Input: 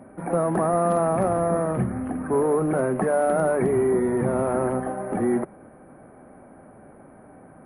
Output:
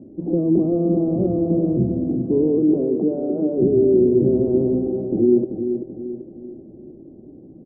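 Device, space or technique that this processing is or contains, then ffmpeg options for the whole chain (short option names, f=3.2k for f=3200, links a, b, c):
under water: -filter_complex "[0:a]asettb=1/sr,asplit=3[a][b][c];[a]atrim=end=2.584[d];[b]atrim=start=2.58:end=3.58,asetpts=PTS-STARTPTS,afade=t=in:d=0.004:c=qsin,afade=t=out:st=0.996:d=0.004:c=qsin,highpass=230[e];[c]atrim=start=3.576[f];[d][e]acrossfade=d=0.004:c1=hsin:c2=qsin[g];[g][f]acrossfade=d=0.004:c1=qsin:c2=hsin,lowpass=f=420:w=0.5412,lowpass=f=420:w=1.3066,equalizer=f=330:t=o:w=0.36:g=10,aecho=1:1:386|772|1158|1544|1930:0.398|0.183|0.0842|0.0388|0.0178,volume=3.5dB"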